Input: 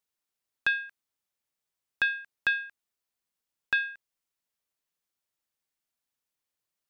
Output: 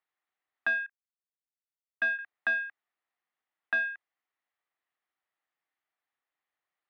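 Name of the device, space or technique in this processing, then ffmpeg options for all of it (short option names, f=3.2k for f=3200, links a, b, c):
overdrive pedal into a guitar cabinet: -filter_complex "[0:a]asettb=1/sr,asplit=3[a][b][c];[a]atrim=end=0.864[d];[b]atrim=start=0.86:end=2.19,asetpts=PTS-STARTPTS,afade=t=in:d=0.004:c=qsin,afade=t=out:st=1.326:d=0.004:c=qsin,agate=range=-23dB:threshold=-32dB:ratio=16:detection=peak[e];[c]atrim=start=2.186[f];[d][e]acrossfade=d=0.004:c1=hsin:c2=qsin[g];[g][f]acrossfade=d=0.004:c1=qsin:c2=hsin,asplit=2[h][i];[i]highpass=f=720:p=1,volume=16dB,asoftclip=type=tanh:threshold=-13.5dB[j];[h][j]amix=inputs=2:normalize=0,lowpass=f=2.2k:p=1,volume=-6dB,highpass=76,equalizer=f=96:t=q:w=4:g=5,equalizer=f=320:t=q:w=4:g=5,equalizer=f=750:t=q:w=4:g=8,equalizer=f=1.2k:t=q:w=4:g=6,equalizer=f=1.9k:t=q:w=4:g=9,lowpass=f=3.9k:w=0.5412,lowpass=f=3.9k:w=1.3066,volume=-9dB"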